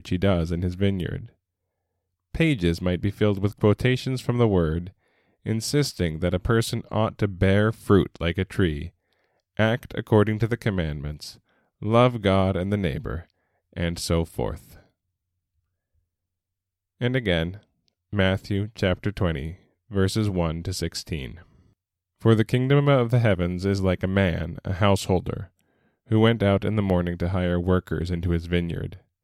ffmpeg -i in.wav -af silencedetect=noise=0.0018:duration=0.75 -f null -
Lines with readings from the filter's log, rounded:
silence_start: 1.35
silence_end: 2.35 | silence_duration: 1.00
silence_start: 14.87
silence_end: 17.00 | silence_duration: 2.13